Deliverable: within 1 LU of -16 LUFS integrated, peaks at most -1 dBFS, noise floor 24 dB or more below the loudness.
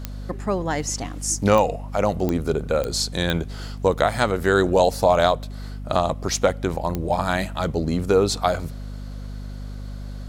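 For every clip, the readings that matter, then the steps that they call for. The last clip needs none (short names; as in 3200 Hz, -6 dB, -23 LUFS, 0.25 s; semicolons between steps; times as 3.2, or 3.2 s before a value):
clicks 6; hum 50 Hz; harmonics up to 250 Hz; hum level -30 dBFS; loudness -22.0 LUFS; peak -4.0 dBFS; loudness target -16.0 LUFS
-> de-click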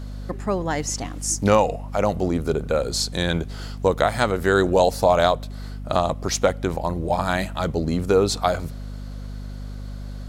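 clicks 0; hum 50 Hz; harmonics up to 250 Hz; hum level -30 dBFS
-> de-hum 50 Hz, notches 5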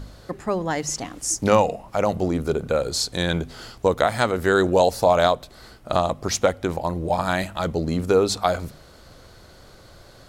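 hum none; loudness -22.5 LUFS; peak -3.0 dBFS; loudness target -16.0 LUFS
-> gain +6.5 dB; limiter -1 dBFS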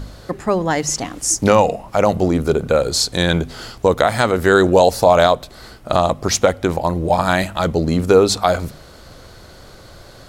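loudness -16.5 LUFS; peak -1.0 dBFS; noise floor -42 dBFS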